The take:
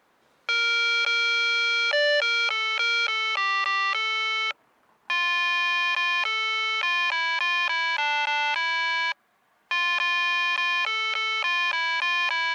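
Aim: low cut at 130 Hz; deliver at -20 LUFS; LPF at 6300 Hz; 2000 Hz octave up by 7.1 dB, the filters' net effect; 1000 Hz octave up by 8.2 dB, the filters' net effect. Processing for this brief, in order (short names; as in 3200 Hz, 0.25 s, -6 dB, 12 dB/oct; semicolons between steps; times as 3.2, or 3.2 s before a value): HPF 130 Hz; LPF 6300 Hz; bell 1000 Hz +7.5 dB; bell 2000 Hz +7 dB; gain -4 dB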